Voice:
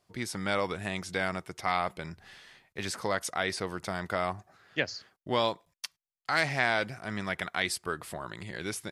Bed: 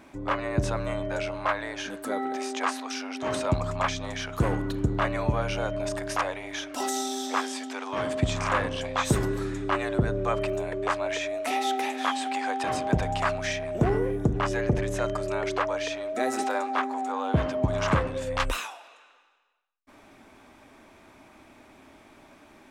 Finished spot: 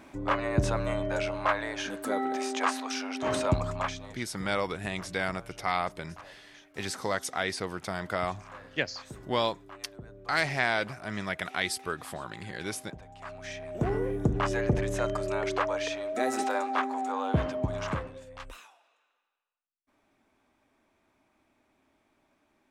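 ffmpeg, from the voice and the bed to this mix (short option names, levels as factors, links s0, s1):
-filter_complex "[0:a]adelay=4000,volume=1[s0];[1:a]volume=10,afade=t=out:st=3.46:d=0.8:silence=0.0841395,afade=t=in:st=13.17:d=1.15:silence=0.1,afade=t=out:st=17.23:d=1.04:silence=0.158489[s1];[s0][s1]amix=inputs=2:normalize=0"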